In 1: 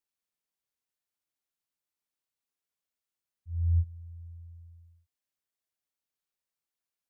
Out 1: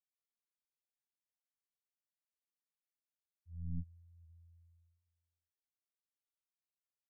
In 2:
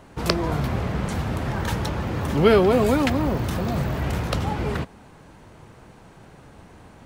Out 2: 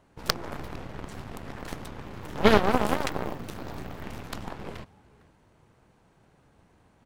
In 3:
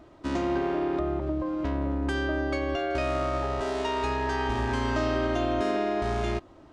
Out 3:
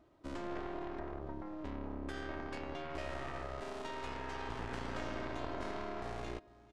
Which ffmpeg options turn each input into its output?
-af "aecho=1:1:456:0.1,aeval=exprs='0.891*(cos(1*acos(clip(val(0)/0.891,-1,1)))-cos(1*PI/2))+0.0282*(cos(5*acos(clip(val(0)/0.891,-1,1)))-cos(5*PI/2))+0.112*(cos(6*acos(clip(val(0)/0.891,-1,1)))-cos(6*PI/2))+0.178*(cos(7*acos(clip(val(0)/0.891,-1,1)))-cos(7*PI/2))':channel_layout=same,volume=-2dB"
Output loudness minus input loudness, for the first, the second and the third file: −15.5, −7.0, −14.5 LU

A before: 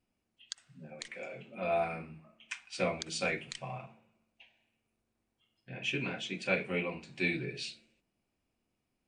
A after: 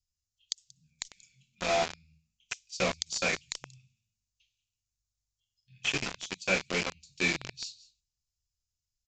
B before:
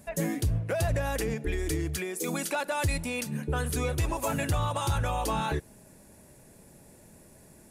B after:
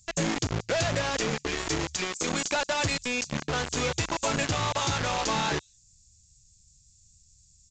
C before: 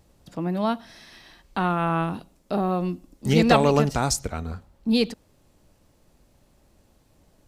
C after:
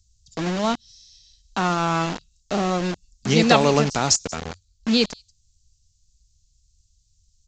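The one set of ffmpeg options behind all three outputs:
-filter_complex "[0:a]highshelf=frequency=3600:gain=10,acrossover=split=100|4500[link_01][link_02][link_03];[link_01]acompressor=threshold=-50dB:ratio=6[link_04];[link_02]acrusher=bits=4:mix=0:aa=0.000001[link_05];[link_03]aecho=1:1:183:0.119[link_06];[link_04][link_05][link_06]amix=inputs=3:normalize=0,aresample=16000,aresample=44100,volume=1dB"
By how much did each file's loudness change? +3.5, +2.0, +2.0 LU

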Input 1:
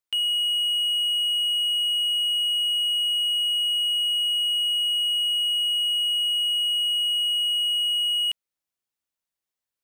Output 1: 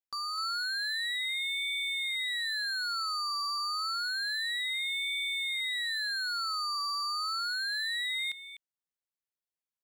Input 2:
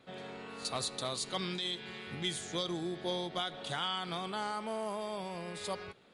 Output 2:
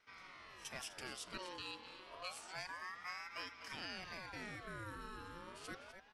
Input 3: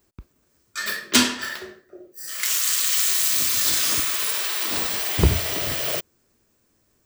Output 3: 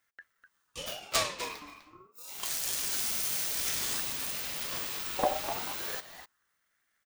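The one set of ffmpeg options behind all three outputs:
-filter_complex "[0:a]asplit=2[link_01][link_02];[link_02]adelay=250.7,volume=-9dB,highshelf=frequency=4000:gain=-5.64[link_03];[link_01][link_03]amix=inputs=2:normalize=0,aeval=exprs='val(0)*sin(2*PI*1200*n/s+1200*0.45/0.29*sin(2*PI*0.29*n/s))':channel_layout=same,volume=-8.5dB"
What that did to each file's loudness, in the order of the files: −10.0, −10.5, −11.0 LU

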